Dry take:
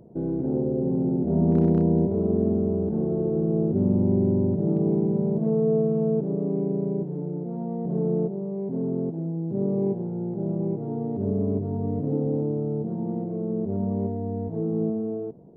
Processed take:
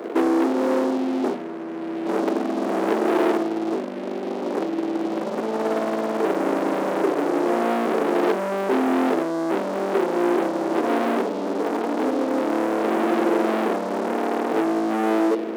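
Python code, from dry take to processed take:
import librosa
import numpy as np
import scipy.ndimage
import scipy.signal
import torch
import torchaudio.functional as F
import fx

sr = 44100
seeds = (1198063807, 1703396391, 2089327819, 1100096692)

y = fx.doubler(x, sr, ms=42.0, db=-3)
y = y + 10.0 ** (-20.5 / 20.0) * np.pad(y, (int(489 * sr / 1000.0), 0))[:len(y)]
y = fx.over_compress(y, sr, threshold_db=-26.0, ratio=-0.5)
y = fx.leveller(y, sr, passes=5)
y = scipy.signal.sosfilt(scipy.signal.butter(6, 280.0, 'highpass', fs=sr, output='sos'), y)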